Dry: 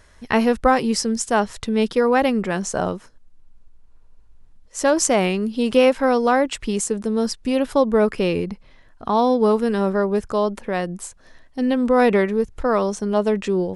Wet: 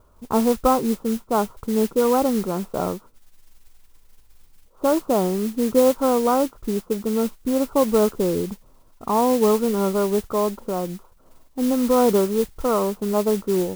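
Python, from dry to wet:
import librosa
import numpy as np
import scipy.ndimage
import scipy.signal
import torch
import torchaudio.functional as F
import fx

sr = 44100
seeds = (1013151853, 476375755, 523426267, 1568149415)

y = scipy.signal.sosfilt(scipy.signal.cheby1(6, 3, 1400.0, 'lowpass', fs=sr, output='sos'), x)
y = fx.mod_noise(y, sr, seeds[0], snr_db=16)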